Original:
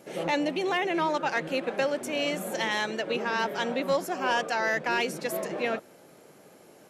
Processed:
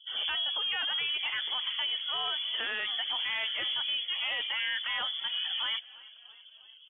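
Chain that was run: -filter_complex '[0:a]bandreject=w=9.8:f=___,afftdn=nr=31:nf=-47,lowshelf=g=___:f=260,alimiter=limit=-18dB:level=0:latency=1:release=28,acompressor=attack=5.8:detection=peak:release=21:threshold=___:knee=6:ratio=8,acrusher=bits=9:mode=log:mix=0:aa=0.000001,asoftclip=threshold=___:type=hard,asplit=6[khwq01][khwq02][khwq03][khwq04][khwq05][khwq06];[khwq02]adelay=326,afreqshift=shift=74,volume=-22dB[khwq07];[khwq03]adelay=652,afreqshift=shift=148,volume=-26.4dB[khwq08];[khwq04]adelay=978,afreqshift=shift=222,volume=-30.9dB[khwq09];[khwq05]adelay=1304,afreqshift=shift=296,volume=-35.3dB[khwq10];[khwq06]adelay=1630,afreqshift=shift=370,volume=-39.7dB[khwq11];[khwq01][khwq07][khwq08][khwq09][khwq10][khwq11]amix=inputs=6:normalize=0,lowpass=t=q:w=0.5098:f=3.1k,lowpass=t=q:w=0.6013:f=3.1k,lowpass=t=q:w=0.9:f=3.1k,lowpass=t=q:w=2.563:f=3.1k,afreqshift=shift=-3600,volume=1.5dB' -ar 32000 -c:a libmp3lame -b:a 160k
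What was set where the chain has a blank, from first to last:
920, 4, -32dB, -26dB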